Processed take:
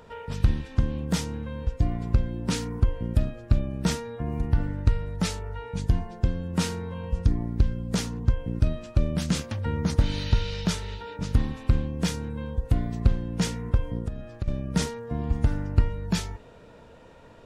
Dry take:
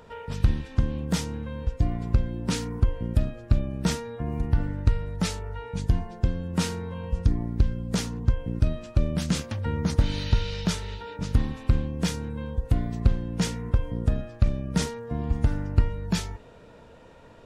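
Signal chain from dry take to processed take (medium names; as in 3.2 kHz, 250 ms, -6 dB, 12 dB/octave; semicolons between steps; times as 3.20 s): 13.97–14.48 s: compression 16:1, threshold -27 dBFS, peak gain reduction 14 dB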